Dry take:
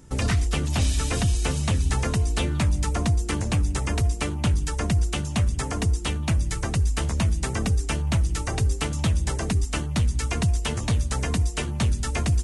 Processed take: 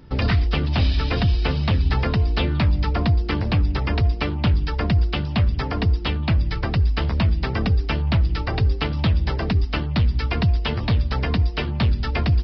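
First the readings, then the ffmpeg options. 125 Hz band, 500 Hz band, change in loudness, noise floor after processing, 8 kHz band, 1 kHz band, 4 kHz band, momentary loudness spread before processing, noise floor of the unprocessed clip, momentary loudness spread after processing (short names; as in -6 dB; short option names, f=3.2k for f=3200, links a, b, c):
+3.5 dB, +3.5 dB, +3.0 dB, -27 dBFS, under -25 dB, +3.5 dB, +3.0 dB, 2 LU, -30 dBFS, 2 LU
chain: -af "aresample=11025,aresample=44100,volume=3.5dB"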